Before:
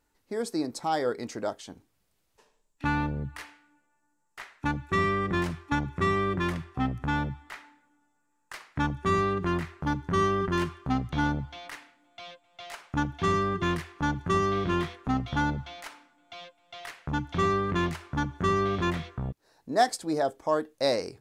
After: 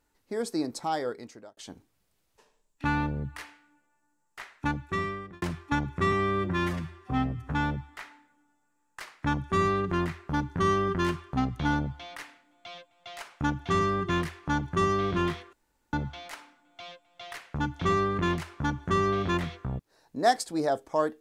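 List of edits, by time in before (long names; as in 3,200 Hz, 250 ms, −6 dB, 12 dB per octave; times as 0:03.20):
0:00.76–0:01.57: fade out
0:04.67–0:05.42: fade out
0:06.12–0:07.06: time-stretch 1.5×
0:15.06–0:15.46: fill with room tone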